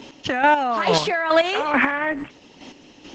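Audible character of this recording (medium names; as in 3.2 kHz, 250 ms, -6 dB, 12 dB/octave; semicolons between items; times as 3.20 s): a quantiser's noise floor 10-bit, dither none; chopped level 2.3 Hz, depth 60%, duty 25%; Opus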